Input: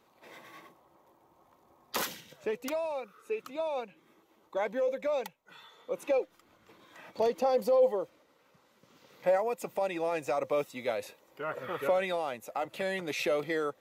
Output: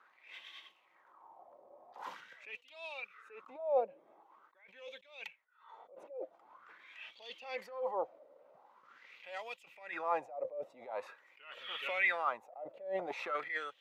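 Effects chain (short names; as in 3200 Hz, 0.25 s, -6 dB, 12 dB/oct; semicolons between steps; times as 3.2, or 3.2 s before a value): wah 0.45 Hz 580–3200 Hz, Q 5.7; attack slew limiter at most 110 dB/s; gain +13.5 dB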